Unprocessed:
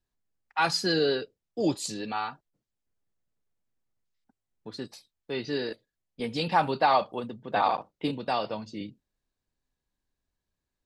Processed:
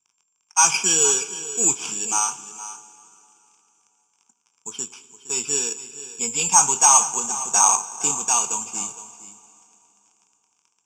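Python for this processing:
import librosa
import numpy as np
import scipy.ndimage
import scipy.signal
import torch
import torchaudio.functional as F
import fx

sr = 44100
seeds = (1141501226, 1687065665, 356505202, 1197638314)

p1 = scipy.ndimage.median_filter(x, 5, mode='constant')
p2 = fx.rev_plate(p1, sr, seeds[0], rt60_s=3.3, hf_ratio=1.0, predelay_ms=0, drr_db=15.5)
p3 = np.clip(10.0 ** (21.5 / 20.0) * p2, -1.0, 1.0) / 10.0 ** (21.5 / 20.0)
p4 = p2 + (p3 * 10.0 ** (-5.0 / 20.0))
p5 = fx.dmg_crackle(p4, sr, seeds[1], per_s=99.0, level_db=-52.0)
p6 = (np.kron(p5[::6], np.eye(6)[0]) * 6)[:len(p5)]
p7 = fx.cabinet(p6, sr, low_hz=210.0, low_slope=12, high_hz=9200.0, hz=(290.0, 460.0, 960.0, 2400.0, 5700.0), db=(-8, 7, 8, 5, 9))
p8 = fx.fixed_phaser(p7, sr, hz=2800.0, stages=8)
p9 = fx.doubler(p8, sr, ms=21.0, db=-13.5)
p10 = p9 + fx.echo_single(p9, sr, ms=464, db=-14.5, dry=0)
y = p10 * 10.0 ** (-1.0 / 20.0)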